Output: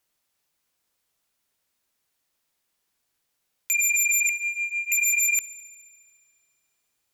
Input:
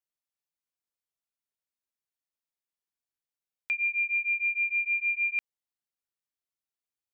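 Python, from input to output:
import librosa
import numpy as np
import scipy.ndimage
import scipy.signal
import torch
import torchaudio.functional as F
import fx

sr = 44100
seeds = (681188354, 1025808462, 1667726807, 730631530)

p1 = fx.fixed_phaser(x, sr, hz=2500.0, stages=6, at=(4.29, 4.92))
p2 = fx.rider(p1, sr, range_db=10, speed_s=0.5)
p3 = fx.fold_sine(p2, sr, drive_db=10, ceiling_db=-24.0)
p4 = p3 + fx.echo_wet_highpass(p3, sr, ms=71, feedback_pct=78, hz=1600.0, wet_db=-22, dry=0)
y = F.gain(torch.from_numpy(p4), 5.0).numpy()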